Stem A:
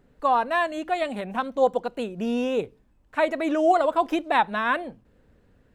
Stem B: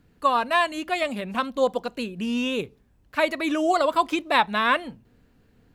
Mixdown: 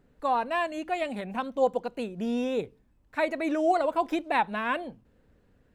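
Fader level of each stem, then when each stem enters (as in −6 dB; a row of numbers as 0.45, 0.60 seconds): −4.0, −17.0 decibels; 0.00, 0.00 seconds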